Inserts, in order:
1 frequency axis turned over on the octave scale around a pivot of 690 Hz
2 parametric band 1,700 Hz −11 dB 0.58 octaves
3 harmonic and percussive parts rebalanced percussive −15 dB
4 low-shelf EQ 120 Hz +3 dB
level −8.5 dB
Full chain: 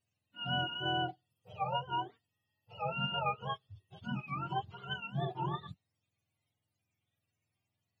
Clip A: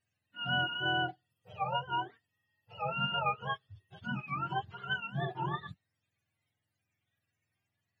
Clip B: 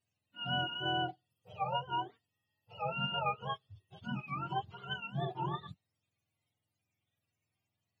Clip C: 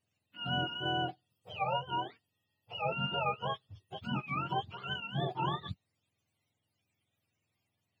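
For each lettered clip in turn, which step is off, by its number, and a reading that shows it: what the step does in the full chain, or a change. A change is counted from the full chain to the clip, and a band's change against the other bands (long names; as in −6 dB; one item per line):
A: 2, 2 kHz band +6.0 dB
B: 4, change in momentary loudness spread −5 LU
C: 3, 500 Hz band +2.0 dB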